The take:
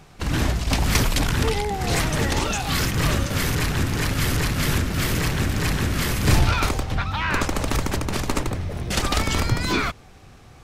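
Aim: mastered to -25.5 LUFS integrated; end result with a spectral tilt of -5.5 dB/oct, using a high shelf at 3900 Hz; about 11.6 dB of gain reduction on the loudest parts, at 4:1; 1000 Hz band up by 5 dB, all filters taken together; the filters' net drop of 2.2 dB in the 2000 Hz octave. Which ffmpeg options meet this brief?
-af "equalizer=f=1k:t=o:g=8,equalizer=f=2k:t=o:g=-3.5,highshelf=f=3.9k:g=-8.5,acompressor=threshold=-27dB:ratio=4,volume=5dB"

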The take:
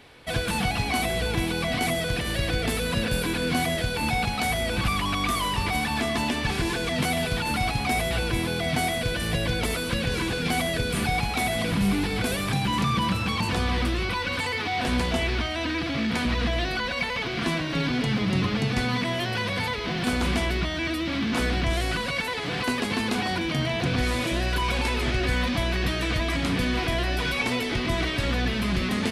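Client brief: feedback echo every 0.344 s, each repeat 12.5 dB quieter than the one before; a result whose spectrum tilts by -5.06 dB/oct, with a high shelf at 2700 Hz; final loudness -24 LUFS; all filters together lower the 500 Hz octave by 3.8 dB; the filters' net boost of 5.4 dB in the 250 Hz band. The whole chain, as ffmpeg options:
-af "equalizer=f=250:t=o:g=8.5,equalizer=f=500:t=o:g=-8,highshelf=f=2.7k:g=-6.5,aecho=1:1:344|688|1032:0.237|0.0569|0.0137,volume=0.5dB"

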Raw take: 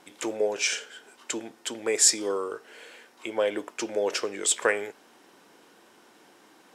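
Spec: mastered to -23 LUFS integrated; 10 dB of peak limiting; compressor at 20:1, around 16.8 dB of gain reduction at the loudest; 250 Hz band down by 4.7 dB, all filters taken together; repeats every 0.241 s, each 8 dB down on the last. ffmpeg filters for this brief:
-af "equalizer=f=250:t=o:g=-7.5,acompressor=threshold=-31dB:ratio=20,alimiter=level_in=4.5dB:limit=-24dB:level=0:latency=1,volume=-4.5dB,aecho=1:1:241|482|723|964|1205:0.398|0.159|0.0637|0.0255|0.0102,volume=16.5dB"

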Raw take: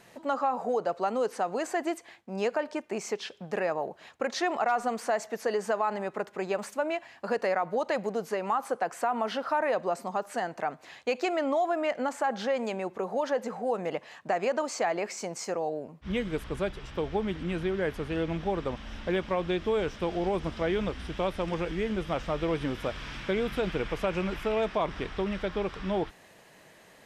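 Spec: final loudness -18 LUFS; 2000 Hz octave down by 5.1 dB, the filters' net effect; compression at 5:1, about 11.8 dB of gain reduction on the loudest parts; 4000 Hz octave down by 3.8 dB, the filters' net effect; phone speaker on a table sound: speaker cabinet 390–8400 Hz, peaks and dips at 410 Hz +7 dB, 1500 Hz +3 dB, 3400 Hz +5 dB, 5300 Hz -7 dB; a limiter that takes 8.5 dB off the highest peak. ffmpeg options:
-af "equalizer=f=2k:t=o:g=-8.5,equalizer=f=4k:t=o:g=-4.5,acompressor=threshold=-38dB:ratio=5,alimiter=level_in=9.5dB:limit=-24dB:level=0:latency=1,volume=-9.5dB,highpass=f=390:w=0.5412,highpass=f=390:w=1.3066,equalizer=f=410:t=q:w=4:g=7,equalizer=f=1.5k:t=q:w=4:g=3,equalizer=f=3.4k:t=q:w=4:g=5,equalizer=f=5.3k:t=q:w=4:g=-7,lowpass=f=8.4k:w=0.5412,lowpass=f=8.4k:w=1.3066,volume=25.5dB"

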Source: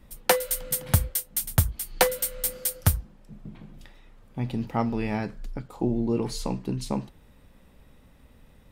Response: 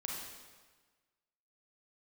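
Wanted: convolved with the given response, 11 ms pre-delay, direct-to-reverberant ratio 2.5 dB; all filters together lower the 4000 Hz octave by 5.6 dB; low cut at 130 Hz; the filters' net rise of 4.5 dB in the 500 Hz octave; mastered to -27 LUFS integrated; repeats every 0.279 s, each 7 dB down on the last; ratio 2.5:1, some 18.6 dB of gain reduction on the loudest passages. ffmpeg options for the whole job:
-filter_complex "[0:a]highpass=130,equalizer=f=500:t=o:g=5,equalizer=f=4k:t=o:g=-7.5,acompressor=threshold=-42dB:ratio=2.5,aecho=1:1:279|558|837|1116|1395:0.447|0.201|0.0905|0.0407|0.0183,asplit=2[a][b];[1:a]atrim=start_sample=2205,adelay=11[c];[b][c]afir=irnorm=-1:irlink=0,volume=-3dB[d];[a][d]amix=inputs=2:normalize=0,volume=12dB"

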